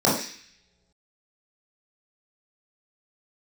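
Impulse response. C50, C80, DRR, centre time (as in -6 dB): 3.5 dB, 8.0 dB, -7.0 dB, 42 ms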